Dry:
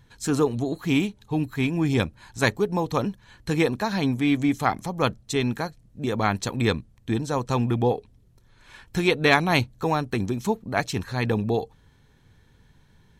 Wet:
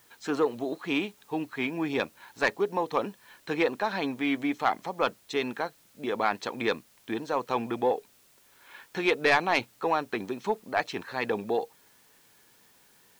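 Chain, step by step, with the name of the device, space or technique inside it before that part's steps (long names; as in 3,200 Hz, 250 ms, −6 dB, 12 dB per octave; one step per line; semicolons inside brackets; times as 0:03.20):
tape answering machine (band-pass filter 390–3,300 Hz; soft clipping −12.5 dBFS, distortion −15 dB; tape wow and flutter; white noise bed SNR 31 dB)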